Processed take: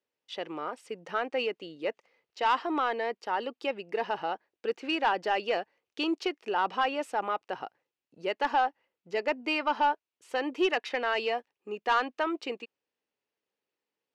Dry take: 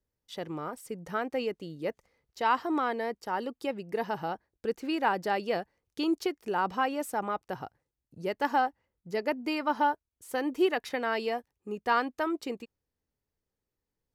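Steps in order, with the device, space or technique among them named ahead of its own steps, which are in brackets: intercom (BPF 360–4800 Hz; bell 2700 Hz +7 dB 0.48 oct; soft clip -19 dBFS, distortion -17 dB); gain +2.5 dB

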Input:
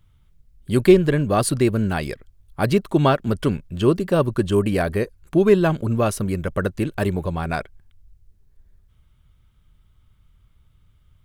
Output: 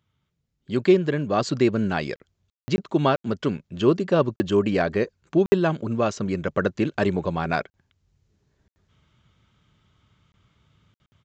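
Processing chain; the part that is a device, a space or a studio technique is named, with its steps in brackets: call with lost packets (HPF 150 Hz 12 dB/oct; downsampling 16000 Hz; AGC gain up to 11.5 dB; packet loss packets of 20 ms bursts); gain -6 dB

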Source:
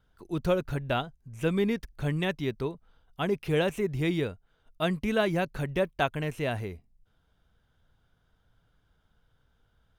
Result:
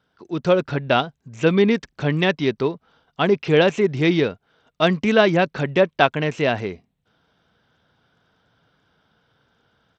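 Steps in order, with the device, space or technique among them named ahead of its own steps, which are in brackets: Bluetooth headset (HPF 170 Hz 12 dB/oct; AGC gain up to 5.5 dB; downsampling 16000 Hz; gain +5.5 dB; SBC 64 kbps 32000 Hz)

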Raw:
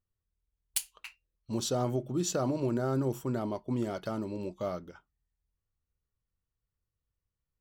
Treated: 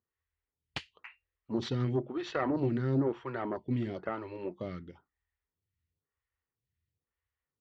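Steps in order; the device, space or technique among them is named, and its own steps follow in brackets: vibe pedal into a guitar amplifier (photocell phaser 1 Hz; tube stage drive 22 dB, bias 0.7; speaker cabinet 80–3600 Hz, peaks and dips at 80 Hz +5 dB, 200 Hz -4 dB, 620 Hz -6 dB, 1900 Hz +8 dB); gain +8 dB

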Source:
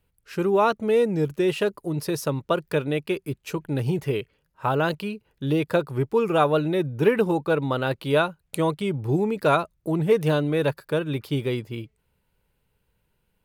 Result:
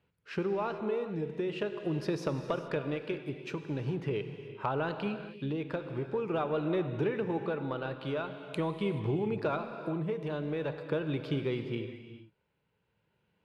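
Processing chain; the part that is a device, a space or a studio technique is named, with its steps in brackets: AM radio (BPF 120–3500 Hz; compressor, threshold -28 dBFS, peak gain reduction 14 dB; soft clip -17 dBFS, distortion -28 dB; tremolo 0.44 Hz, depth 37%); non-linear reverb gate 0.46 s flat, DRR 7 dB

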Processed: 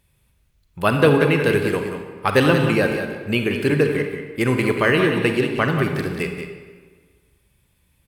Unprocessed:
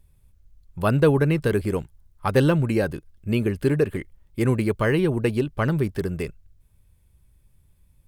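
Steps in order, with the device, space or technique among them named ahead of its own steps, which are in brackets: PA in a hall (HPF 200 Hz 6 dB/oct; bell 2500 Hz +7 dB 1.5 oct; echo 0.183 s -8.5 dB; reverb RT60 1.6 s, pre-delay 31 ms, DRR 5 dB); gain +3 dB

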